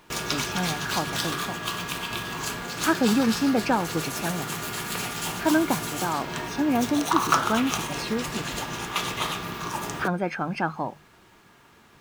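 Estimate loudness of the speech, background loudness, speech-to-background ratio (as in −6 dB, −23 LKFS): −27.5 LKFS, −29.0 LKFS, 1.5 dB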